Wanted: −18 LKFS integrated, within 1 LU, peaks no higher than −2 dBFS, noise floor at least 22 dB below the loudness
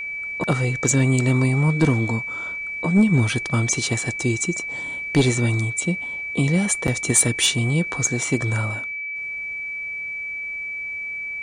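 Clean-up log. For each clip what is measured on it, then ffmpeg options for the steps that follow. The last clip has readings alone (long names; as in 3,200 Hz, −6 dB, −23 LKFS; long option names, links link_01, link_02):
interfering tone 2,300 Hz; level of the tone −27 dBFS; integrated loudness −21.5 LKFS; sample peak −6.5 dBFS; target loudness −18.0 LKFS
→ -af "bandreject=frequency=2300:width=30"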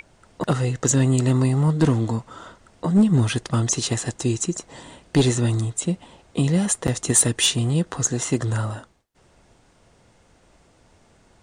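interfering tone none found; integrated loudness −21.5 LKFS; sample peak −7.5 dBFS; target loudness −18.0 LKFS
→ -af "volume=3.5dB"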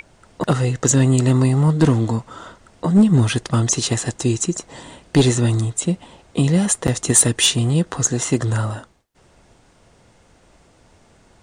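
integrated loudness −18.0 LKFS; sample peak −4.0 dBFS; background noise floor −54 dBFS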